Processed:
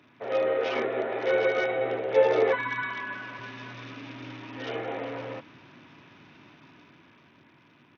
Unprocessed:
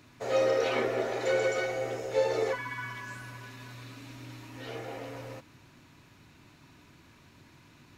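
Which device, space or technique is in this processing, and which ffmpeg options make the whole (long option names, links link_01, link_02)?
Bluetooth headset: -filter_complex "[0:a]asettb=1/sr,asplit=3[link_01][link_02][link_03];[link_01]atrim=end=2.824[link_04];[link_02]atrim=start=2.82:end=3.39,asetpts=PTS-STARTPTS,afade=type=in:duration=0.004:curve=qsin,afade=type=out:start_time=0.566:duration=0.004:curve=qsin,highpass=180[link_05];[link_03]atrim=start=3.386[link_06];[link_04][link_05]acrossfade=duration=0.004:curve1=hsin:curve2=qsin[link_07];[link_07][link_06]acrossfade=duration=0.004:curve1=qsin:curve2=hsin,highpass=170,dynaudnorm=framelen=240:gausssize=13:maxgain=7dB,aresample=8000,aresample=44100" -ar 48000 -c:a sbc -b:a 64k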